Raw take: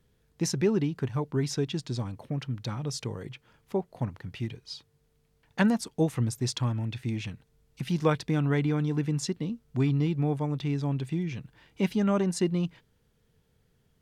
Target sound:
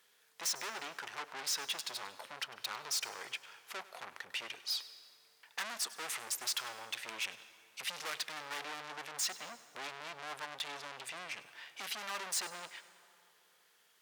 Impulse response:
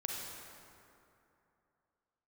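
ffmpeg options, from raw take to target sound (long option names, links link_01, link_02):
-filter_complex "[0:a]aeval=exprs='(tanh(126*val(0)+0.45)-tanh(0.45))/126':channel_layout=same,highpass=1100,asplit=2[link_01][link_02];[1:a]atrim=start_sample=2205,adelay=100[link_03];[link_02][link_03]afir=irnorm=-1:irlink=0,volume=-15.5dB[link_04];[link_01][link_04]amix=inputs=2:normalize=0,volume=11dB"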